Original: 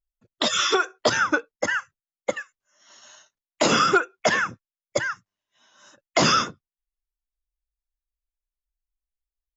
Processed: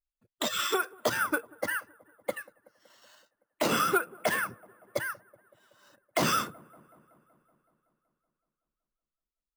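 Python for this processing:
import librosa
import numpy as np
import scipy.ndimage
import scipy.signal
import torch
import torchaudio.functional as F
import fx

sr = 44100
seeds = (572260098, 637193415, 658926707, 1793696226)

p1 = scipy.signal.sosfilt(scipy.signal.butter(2, 5000.0, 'lowpass', fs=sr, output='sos'), x)
p2 = p1 + fx.echo_wet_lowpass(p1, sr, ms=188, feedback_pct=67, hz=1100.0, wet_db=-23.0, dry=0)
p3 = np.repeat(p2[::4], 4)[:len(p2)]
y = p3 * 10.0 ** (-7.0 / 20.0)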